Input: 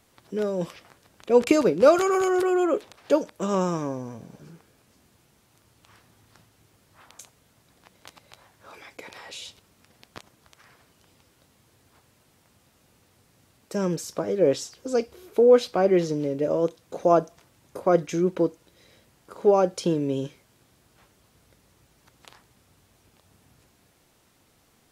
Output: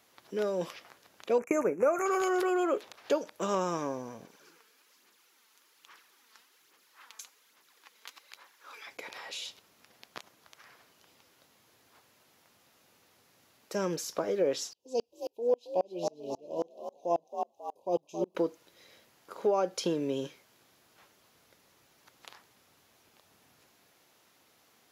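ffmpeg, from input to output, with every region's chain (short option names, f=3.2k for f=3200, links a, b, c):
-filter_complex "[0:a]asettb=1/sr,asplit=3[a][b][c];[a]atrim=end=1.384[d];[b]atrim=start=1.38:end=2.06,asetpts=PTS-STARTPTS,afade=t=in:d=0.004:c=qsin,afade=t=out:st=0.676:d=0.004:c=qsin,asuperstop=centerf=3900:order=12:qfactor=1.1,agate=range=-33dB:threshold=-25dB:ratio=3:release=100:detection=peak[e];[c]atrim=start=2.056[f];[d][e]acrossfade=d=0.004:c1=hsin:c2=qsin[g];[g][f]acrossfade=d=0.004:c1=qsin:c2=hsin,asettb=1/sr,asplit=3[h][i][j];[h]atrim=end=4.254[k];[i]atrim=start=4.25:end=8.87,asetpts=PTS-STARTPTS,afade=t=in:d=0.004:c=qsin,afade=t=out:st=4.616:d=0.004:c=qsin,highpass=460,equalizer=f=660:w=2.1:g=-11,aphaser=in_gain=1:out_gain=1:delay=4.6:decay=0.47:speed=1.2:type=sinusoidal[l];[j]atrim=start=8.866[m];[k][l]acrossfade=d=0.004:c1=hsin:c2=qsin[n];[n][m]acrossfade=d=0.004:c1=qsin:c2=hsin,asettb=1/sr,asplit=3[o][p][q];[o]atrim=end=14.734[r];[p]atrim=start=14.73:end=18.35,asetpts=PTS-STARTPTS,afade=t=in:d=0.004:c=qsin,afade=t=out:st=3.616:d=0.004:c=qsin,asuperstop=centerf=1600:order=20:qfactor=1.1,asplit=6[s][t][u][v][w][x];[t]adelay=271,afreqshift=58,volume=-9dB[y];[u]adelay=542,afreqshift=116,volume=-15.6dB[z];[v]adelay=813,afreqshift=174,volume=-22.1dB[aa];[w]adelay=1084,afreqshift=232,volume=-28.7dB[ab];[x]adelay=1355,afreqshift=290,volume=-35.2dB[ac];[s][y][z][aa][ab][ac]amix=inputs=6:normalize=0,atrim=end_sample=159642,aeval=exprs='val(0)*pow(10,-34*if(lt(mod(-3.7*n/s,1),2*abs(-3.7)/1000),1-mod(-3.7*n/s,1)/(2*abs(-3.7)/1000),(mod(-3.7*n/s,1)-2*abs(-3.7)/1000)/(1-2*abs(-3.7)/1000))/20)':c=same[ad];[q]atrim=start=18.346[ae];[r][ad]acrossfade=d=0.004:c1=hsin:c2=qsin[af];[af][ae]acrossfade=d=0.004:c1=qsin:c2=hsin,highpass=f=500:p=1,equalizer=f=8.5k:w=5.2:g=-10.5,acompressor=threshold=-25dB:ratio=3"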